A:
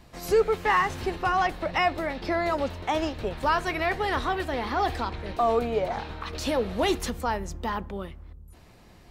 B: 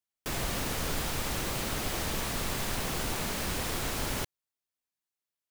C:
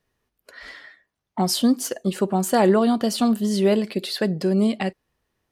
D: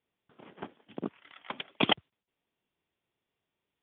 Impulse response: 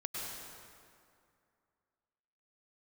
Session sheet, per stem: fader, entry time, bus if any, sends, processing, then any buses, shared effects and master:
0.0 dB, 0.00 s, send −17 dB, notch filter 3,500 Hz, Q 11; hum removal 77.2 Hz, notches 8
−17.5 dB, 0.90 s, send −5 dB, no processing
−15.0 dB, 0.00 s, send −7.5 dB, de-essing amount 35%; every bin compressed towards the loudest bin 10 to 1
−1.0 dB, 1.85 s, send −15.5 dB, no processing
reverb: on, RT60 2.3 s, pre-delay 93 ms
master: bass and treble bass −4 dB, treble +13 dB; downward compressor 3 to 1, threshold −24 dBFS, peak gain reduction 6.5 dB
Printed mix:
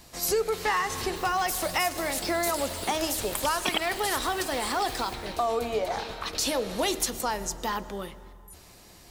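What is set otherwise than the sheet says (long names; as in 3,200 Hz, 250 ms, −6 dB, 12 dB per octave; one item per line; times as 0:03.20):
stem A: missing notch filter 3,500 Hz, Q 11
stem B −17.5 dB → −24.0 dB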